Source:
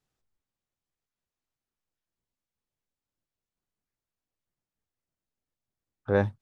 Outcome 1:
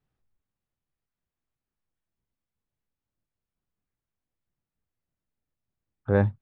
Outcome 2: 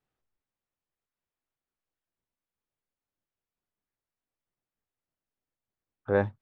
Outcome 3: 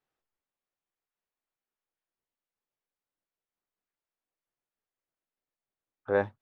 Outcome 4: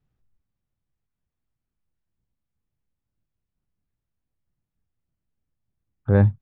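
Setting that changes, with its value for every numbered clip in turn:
tone controls, bass: +6, -4, -13, +14 dB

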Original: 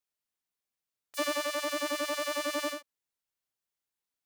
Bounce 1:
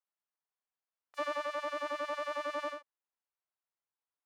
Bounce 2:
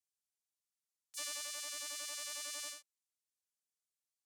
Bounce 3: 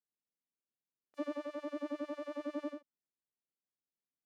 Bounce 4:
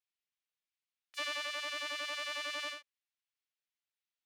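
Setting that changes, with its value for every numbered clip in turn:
band-pass, frequency: 970, 7700, 240, 2700 Hz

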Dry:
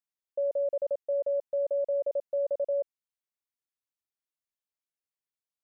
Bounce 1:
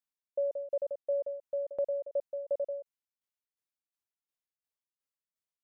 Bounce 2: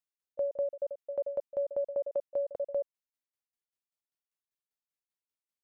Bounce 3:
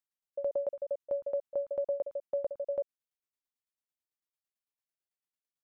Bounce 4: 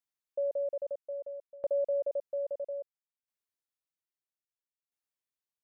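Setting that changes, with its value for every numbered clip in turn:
tremolo, rate: 2.8, 5.1, 9, 0.61 Hz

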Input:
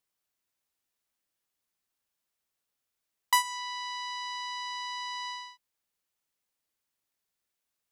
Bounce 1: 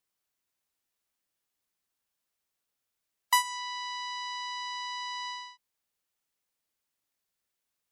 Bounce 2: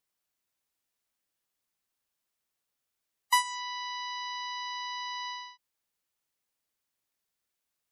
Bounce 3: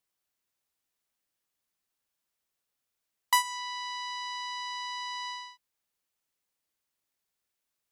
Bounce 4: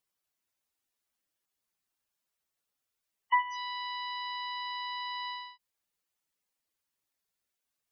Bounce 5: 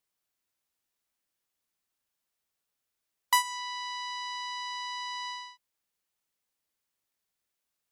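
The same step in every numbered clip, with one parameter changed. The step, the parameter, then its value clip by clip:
spectral gate, under each frame's peak: -35, -20, -60, -10, -50 dB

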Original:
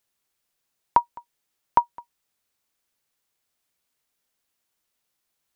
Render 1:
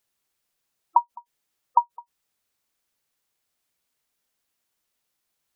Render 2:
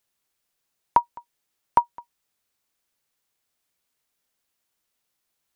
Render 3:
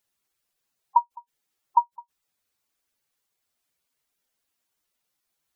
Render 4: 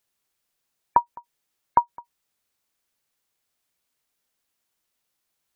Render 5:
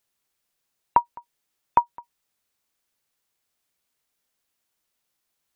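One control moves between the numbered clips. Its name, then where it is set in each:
spectral gate, under each frame's peak: -20, -60, -10, -35, -45 dB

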